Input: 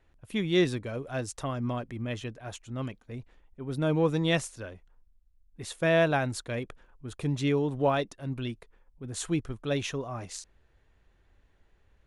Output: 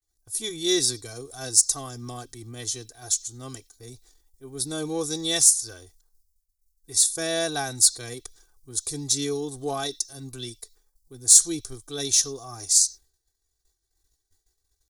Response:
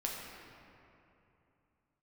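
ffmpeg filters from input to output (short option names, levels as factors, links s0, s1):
-filter_complex "[0:a]agate=range=0.0224:threshold=0.00224:ratio=3:detection=peak,aecho=1:1:2.6:0.8,atempo=0.81,asplit=2[s0][s1];[s1]asuperpass=centerf=4300:order=4:qfactor=1.4[s2];[1:a]atrim=start_sample=2205,afade=t=out:st=0.16:d=0.01,atrim=end_sample=7497[s3];[s2][s3]afir=irnorm=-1:irlink=0,volume=0.316[s4];[s0][s4]amix=inputs=2:normalize=0,aexciter=amount=11.6:drive=9.4:freq=4400,volume=0.531"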